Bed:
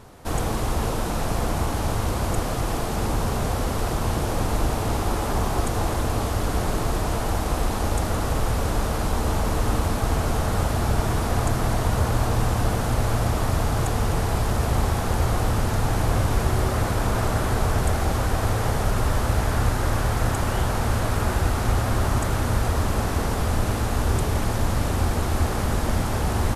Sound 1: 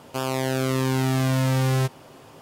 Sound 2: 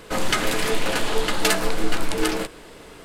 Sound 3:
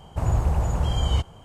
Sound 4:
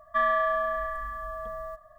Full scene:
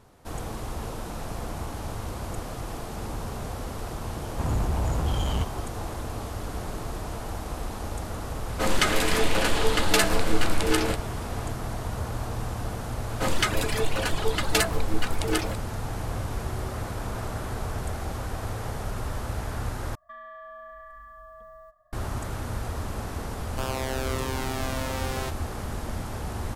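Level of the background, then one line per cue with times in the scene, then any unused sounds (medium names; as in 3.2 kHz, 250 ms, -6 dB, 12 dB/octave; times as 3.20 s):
bed -9.5 dB
4.22 s: add 3 -0.5 dB + overload inside the chain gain 23 dB
8.49 s: add 2 -1 dB + resampled via 32 kHz
13.10 s: add 2 -2 dB + reverb removal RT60 2 s
19.95 s: replace with 4 -10.5 dB + compression 5:1, threshold -30 dBFS
23.43 s: add 1 -4 dB + high-pass 390 Hz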